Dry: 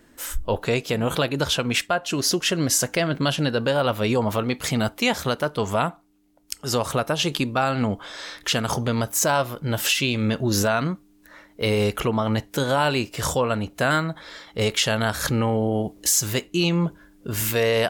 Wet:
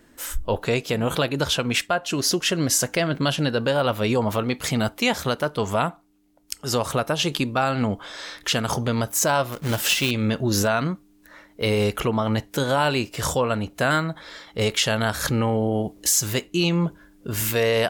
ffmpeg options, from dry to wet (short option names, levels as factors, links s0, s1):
-filter_complex "[0:a]asettb=1/sr,asplit=3[s0][s1][s2];[s0]atrim=end=9.524[s3];[s1]atrim=start=9.52:end=10.11,asetpts=PTS-STARTPTS,afade=t=in:d=0.004:c=qsin,afade=t=out:st=0.586:d=0.004:c=qsin,acrusher=bits=2:mode=log:mix=0:aa=0.000001[s4];[s2]atrim=start=10.106[s5];[s3][s4]acrossfade=d=0.004:c1=hsin:c2=qsin[s6];[s6][s5]acrossfade=d=0.004:c1=qsin:c2=hsin"